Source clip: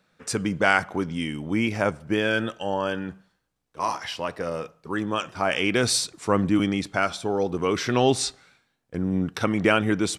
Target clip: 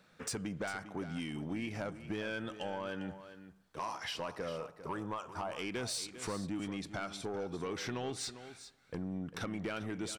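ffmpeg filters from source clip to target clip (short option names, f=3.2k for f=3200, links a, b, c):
-filter_complex "[0:a]asettb=1/sr,asplit=3[a][b][c];[a]atrim=end=4.614[d];[b]atrim=start=4.61:end=5.59,asetpts=PTS-STARTPTS,afade=t=in:d=0.004:c=qsin,afade=t=out:st=0.976:d=0.004:c=qsin,equalizer=f=250:t=o:w=1:g=-7,equalizer=f=1k:t=o:w=1:g=8,equalizer=f=2k:t=o:w=1:g=-11,equalizer=f=4k:t=o:w=1:g=-6[e];[c]atrim=start=5.586[f];[d][e]acrossfade=d=0.004:c1=hsin:c2=qsin[g];[g][f]acrossfade=d=0.004:c1=qsin:c2=hsin,acompressor=threshold=-37dB:ratio=5,asoftclip=type=tanh:threshold=-32dB,aecho=1:1:400:0.237,volume=1.5dB"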